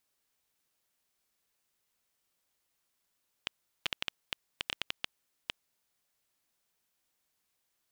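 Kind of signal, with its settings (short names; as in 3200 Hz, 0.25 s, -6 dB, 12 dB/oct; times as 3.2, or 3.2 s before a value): random clicks 6.3/s -13.5 dBFS 2.25 s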